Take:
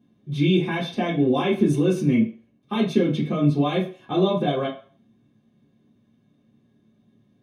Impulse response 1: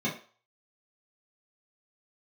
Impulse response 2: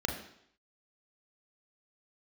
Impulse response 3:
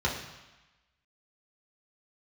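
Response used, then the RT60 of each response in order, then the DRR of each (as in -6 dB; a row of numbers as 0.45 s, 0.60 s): 1; 0.40 s, 0.70 s, 1.1 s; -8.0 dB, 1.0 dB, -4.5 dB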